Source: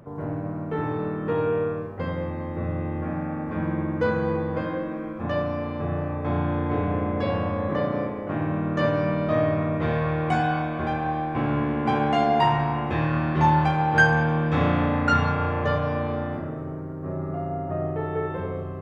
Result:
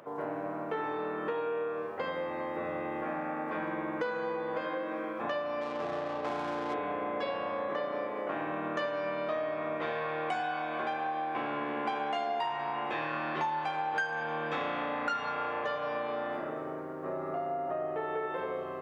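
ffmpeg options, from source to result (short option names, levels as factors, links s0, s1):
-filter_complex "[0:a]asettb=1/sr,asplit=3[s0][s1][s2];[s0]atrim=end=5.614[s3];[s1]atrim=start=5.61:end=6.74,asetpts=PTS-STARTPTS,afade=t=in:d=0.004:c=qsin,afade=t=out:st=1.126:d=0.004:c=qsin,adynamicsmooth=sensitivity=7:basefreq=710[s4];[s2]atrim=start=6.736[s5];[s3][s4]acrossfade=d=0.004:c1=hsin:c2=qsin[s6];[s6][s5]acrossfade=d=0.004:c1=qsin:c2=hsin,highpass=480,equalizer=f=3200:w=1.5:g=2.5,acompressor=threshold=0.02:ratio=6,volume=1.41"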